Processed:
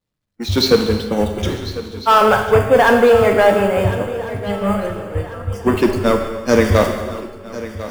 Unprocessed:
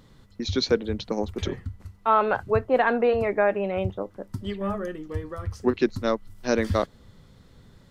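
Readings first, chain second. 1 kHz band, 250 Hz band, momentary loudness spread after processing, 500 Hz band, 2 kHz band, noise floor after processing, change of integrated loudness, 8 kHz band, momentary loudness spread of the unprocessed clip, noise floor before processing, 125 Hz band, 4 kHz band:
+9.5 dB, +9.5 dB, 15 LU, +10.5 dB, +10.5 dB, -41 dBFS, +10.0 dB, no reading, 13 LU, -54 dBFS, +11.0 dB, +11.0 dB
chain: jump at every zero crossing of -30.5 dBFS; expander -21 dBFS; in parallel at -3 dB: wavefolder -16.5 dBFS; on the sum: spectral noise reduction 26 dB; on a send: shuffle delay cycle 1397 ms, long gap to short 3:1, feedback 35%, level -15 dB; on the sum: gated-style reverb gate 450 ms falling, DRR 4 dB; trim +4.5 dB

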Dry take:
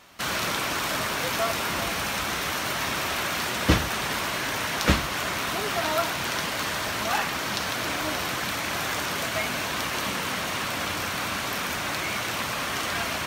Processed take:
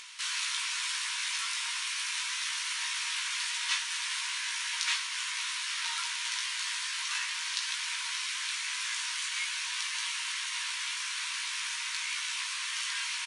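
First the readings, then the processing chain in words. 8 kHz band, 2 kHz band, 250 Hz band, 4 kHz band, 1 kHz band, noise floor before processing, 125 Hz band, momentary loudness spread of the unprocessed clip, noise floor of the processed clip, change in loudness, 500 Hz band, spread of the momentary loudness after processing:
-1.0 dB, -6.0 dB, under -40 dB, -2.0 dB, -14.0 dB, -30 dBFS, under -40 dB, 4 LU, -36 dBFS, -5.0 dB, under -40 dB, 2 LU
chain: peaking EQ 1.2 kHz -14.5 dB 0.98 oct; upward compressor, threshold -35 dBFS; brick-wall FIR band-pass 910–11000 Hz; doubling 18 ms -4 dB; trim -2 dB

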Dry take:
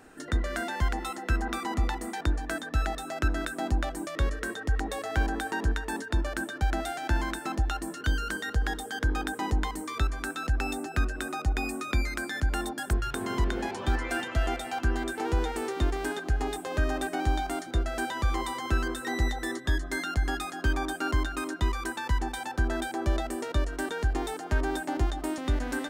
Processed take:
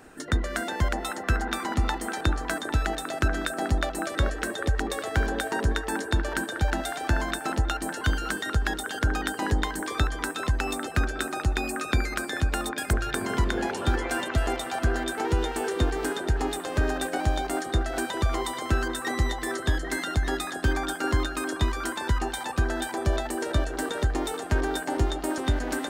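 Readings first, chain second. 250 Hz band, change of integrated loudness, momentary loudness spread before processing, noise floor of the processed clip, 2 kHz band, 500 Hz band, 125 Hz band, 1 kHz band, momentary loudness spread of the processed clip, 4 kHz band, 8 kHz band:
+2.5 dB, +2.5 dB, 3 LU, -36 dBFS, +3.0 dB, +4.0 dB, +3.0 dB, +2.5 dB, 2 LU, +4.5 dB, +5.5 dB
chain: harmonic-percussive split percussive +6 dB; repeats whose band climbs or falls 399 ms, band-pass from 500 Hz, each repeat 1.4 oct, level -1.5 dB

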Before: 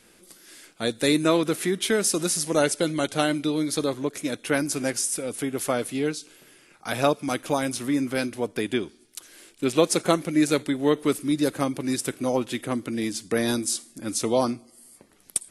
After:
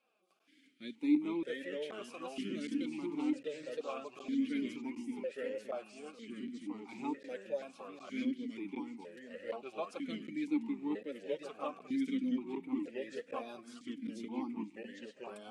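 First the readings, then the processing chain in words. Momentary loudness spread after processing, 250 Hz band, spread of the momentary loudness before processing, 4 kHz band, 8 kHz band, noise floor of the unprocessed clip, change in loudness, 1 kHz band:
13 LU, -10.5 dB, 8 LU, -20.5 dB, under -30 dB, -57 dBFS, -14.5 dB, -16.5 dB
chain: ever faster or slower copies 314 ms, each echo -2 st, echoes 3; band-stop 720 Hz, Q 12; flange 1.8 Hz, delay 3.5 ms, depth 2.1 ms, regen +25%; crackling interface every 0.76 s, samples 512, zero, from 0.39 s; stepped vowel filter 2.1 Hz; trim -2.5 dB

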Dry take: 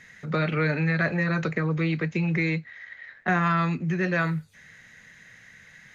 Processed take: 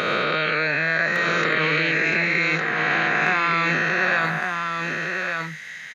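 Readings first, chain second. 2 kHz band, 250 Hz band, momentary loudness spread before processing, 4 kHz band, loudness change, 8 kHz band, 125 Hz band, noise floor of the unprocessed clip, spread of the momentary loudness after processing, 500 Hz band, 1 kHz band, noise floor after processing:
+10.5 dB, -3.0 dB, 9 LU, +14.0 dB, +5.0 dB, no reading, -6.0 dB, -53 dBFS, 6 LU, +4.5 dB, +7.0 dB, -37 dBFS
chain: reverse spectral sustain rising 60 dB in 2.51 s; high-pass 510 Hz 6 dB/octave; peaking EQ 3.1 kHz +5.5 dB 1.9 oct; in parallel at -2 dB: compressor with a negative ratio -27 dBFS, ratio -0.5; on the sum: hard clipper -7 dBFS, distortion -48 dB; on a send: delay 1159 ms -4.5 dB; on the sum: trim -2 dB

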